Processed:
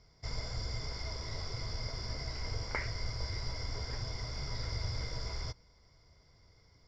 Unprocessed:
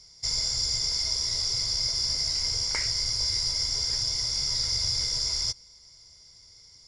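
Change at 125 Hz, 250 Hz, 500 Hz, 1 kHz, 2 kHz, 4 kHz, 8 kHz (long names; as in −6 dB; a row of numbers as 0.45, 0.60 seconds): +2.0 dB, can't be measured, +2.0 dB, +0.5 dB, −3.5 dB, −18.5 dB, −22.0 dB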